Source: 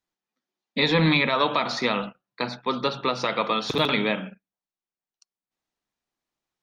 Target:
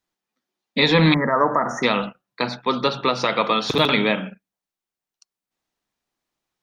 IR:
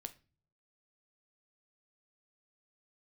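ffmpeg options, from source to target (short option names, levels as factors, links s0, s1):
-filter_complex "[0:a]asettb=1/sr,asplit=3[s0][s1][s2];[s0]atrim=end=1.144[s3];[s1]atrim=start=1.14:end=1.83,asetpts=PTS-STARTPTS,afade=t=in:d=0.004:c=qsin,afade=t=out:st=0.686:d=0.004:c=qsin,asuperstop=centerf=3400:order=20:qfactor=0.88[s4];[s2]atrim=start=1.826[s5];[s3][s4]acrossfade=d=0.004:c1=hsin:c2=qsin[s6];[s6][s5]acrossfade=d=0.004:c1=qsin:c2=hsin,volume=1.68"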